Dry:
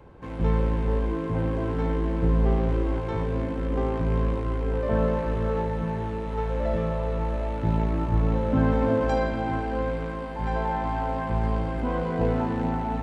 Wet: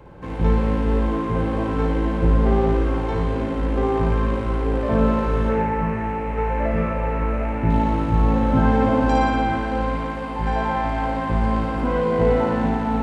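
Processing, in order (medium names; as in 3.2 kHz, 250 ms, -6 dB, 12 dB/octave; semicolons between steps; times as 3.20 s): 5.49–7.70 s: resonant high shelf 2.9 kHz -6.5 dB, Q 3; flutter echo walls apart 10 m, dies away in 1 s; trim +4.5 dB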